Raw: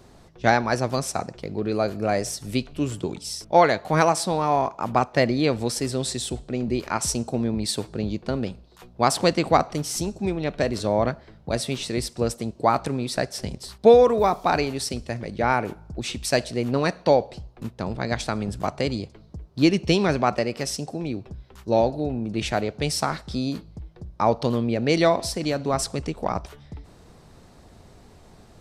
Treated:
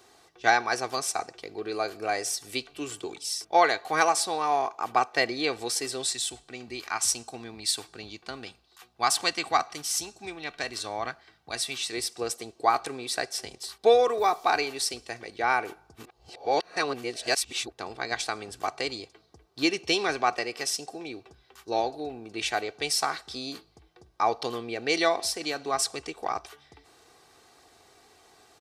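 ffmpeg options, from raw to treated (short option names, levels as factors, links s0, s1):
-filter_complex "[0:a]asettb=1/sr,asplit=3[s0][s1][s2];[s0]atrim=end=6.064[s3];[s1]atrim=start=6.06:end=11.92,asetpts=PTS-STARTPTS,afade=t=in:d=0.004:c=qsin,afade=t=out:st=5.856:d=0.004:c=qsin,equalizer=f=450:w=1.1:g=-8.5[s4];[s2]atrim=start=11.916[s5];[s3][s4]acrossfade=d=0.004:c1=hsin:c2=qsin[s6];[s6][s5]acrossfade=d=0.004:c1=qsin:c2=hsin,asplit=3[s7][s8][s9];[s7]atrim=end=15.952[s10];[s8]atrim=start=15.948:end=17.722,asetpts=PTS-STARTPTS,areverse[s11];[s9]atrim=start=17.718[s12];[s10][s11]acrossfade=d=0.004:c1=hsin:c2=hsin[s13];[s13][s12]acrossfade=d=0.004:c1=hsin:c2=hsin,highpass=f=1100:p=1,aecho=1:1:2.6:0.56"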